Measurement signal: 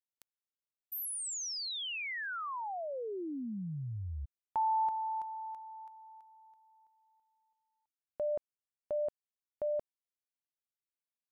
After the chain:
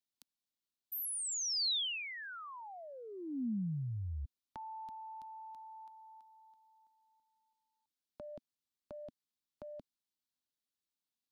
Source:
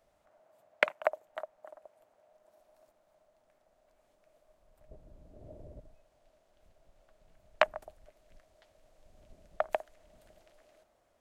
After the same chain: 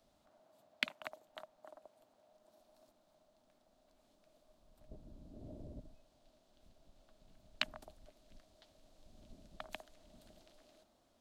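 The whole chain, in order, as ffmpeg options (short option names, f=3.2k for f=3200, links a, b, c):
-filter_complex "[0:a]equalizer=f=250:t=o:w=1:g=9,equalizer=f=500:t=o:w=1:g=-5,equalizer=f=2k:t=o:w=1:g=-6,equalizer=f=4k:t=o:w=1:g=8,acrossover=split=240|2000[a][b][c];[b]acompressor=threshold=-48dB:ratio=5:attack=2.9:release=51:knee=2.83:detection=peak[d];[a][d][c]amix=inputs=3:normalize=0,volume=-1dB"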